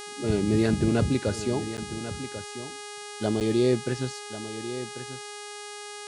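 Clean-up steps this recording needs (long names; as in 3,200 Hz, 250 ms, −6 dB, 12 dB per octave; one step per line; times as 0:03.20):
hum removal 413.6 Hz, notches 26
repair the gap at 0:01.77/0:03.40, 8.9 ms
echo removal 1,092 ms −12 dB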